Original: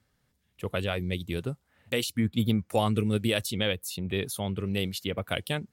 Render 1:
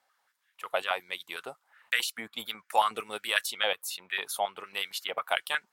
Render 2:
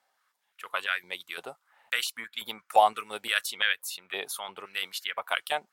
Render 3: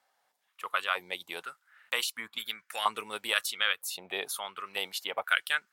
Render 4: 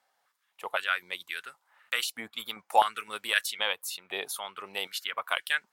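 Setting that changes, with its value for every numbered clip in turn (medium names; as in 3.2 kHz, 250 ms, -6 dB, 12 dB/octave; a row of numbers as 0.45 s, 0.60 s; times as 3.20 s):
step-sequenced high-pass, rate: 11 Hz, 5.8 Hz, 2.1 Hz, 3.9 Hz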